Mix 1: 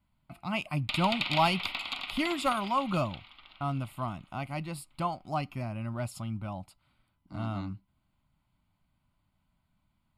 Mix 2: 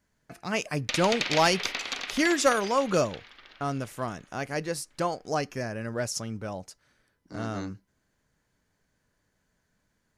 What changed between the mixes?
speech: add tone controls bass -3 dB, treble +4 dB; master: remove fixed phaser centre 1700 Hz, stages 6

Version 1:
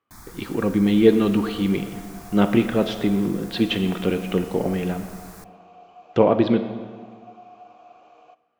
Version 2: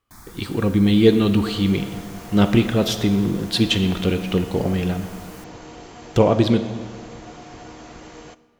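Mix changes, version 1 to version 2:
speech: remove BPF 180–2500 Hz; second sound: remove vowel filter a

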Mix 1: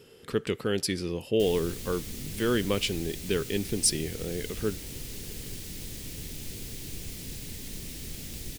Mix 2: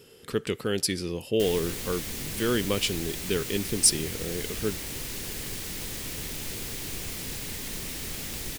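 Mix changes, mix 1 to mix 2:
background: add bell 1100 Hz +13 dB 2.4 oct; master: add high shelf 4800 Hz +6 dB

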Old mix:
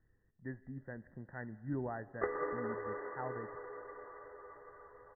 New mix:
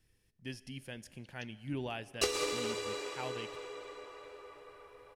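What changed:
background: add tilt -2 dB/oct; master: remove brick-wall FIR low-pass 2000 Hz

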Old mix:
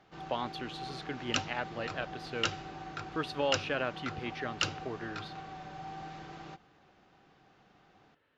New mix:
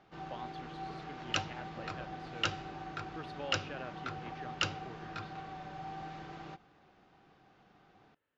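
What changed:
speech -11.5 dB; master: add high shelf 7200 Hz -10.5 dB

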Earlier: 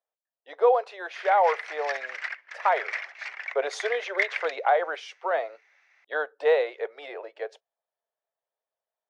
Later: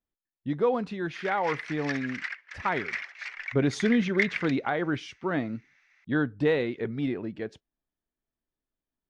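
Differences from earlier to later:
speech: remove steep high-pass 460 Hz 48 dB/oct; master: add bell 670 Hz -10.5 dB 1.2 oct

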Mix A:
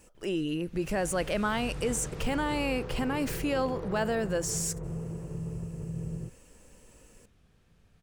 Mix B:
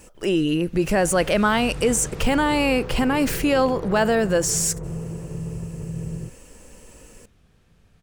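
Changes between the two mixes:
speech +10.0 dB; background +5.5 dB

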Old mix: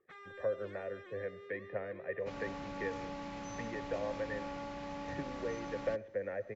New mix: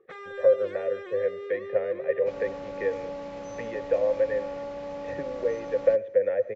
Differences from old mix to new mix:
speech: remove air absorption 490 m; first sound +9.0 dB; master: add bell 520 Hz +14.5 dB 0.59 oct

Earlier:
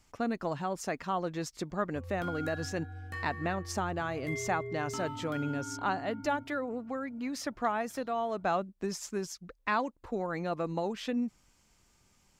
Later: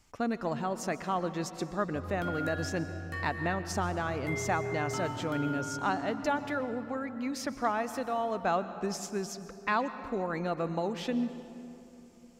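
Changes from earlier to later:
speech: send on; background: send +9.0 dB

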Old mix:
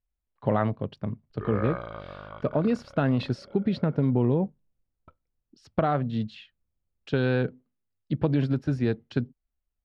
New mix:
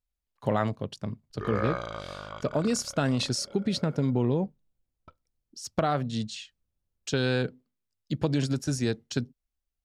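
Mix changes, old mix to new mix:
speech -3.0 dB; master: remove air absorption 410 m

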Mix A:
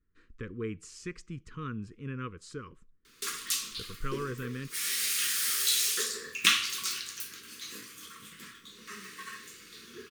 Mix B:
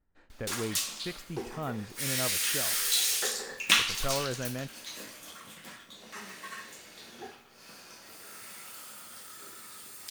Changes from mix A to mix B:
background: entry -2.75 s; master: remove Chebyshev band-stop 460–1100 Hz, order 3

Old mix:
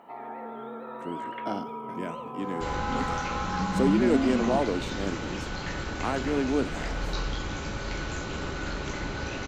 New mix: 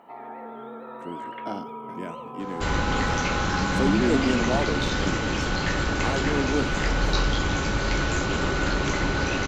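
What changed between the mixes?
second sound +11.5 dB; reverb: off

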